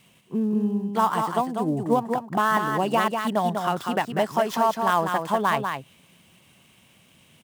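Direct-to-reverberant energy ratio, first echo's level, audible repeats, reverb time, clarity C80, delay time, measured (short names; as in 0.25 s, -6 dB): none, -5.5 dB, 1, none, none, 0.195 s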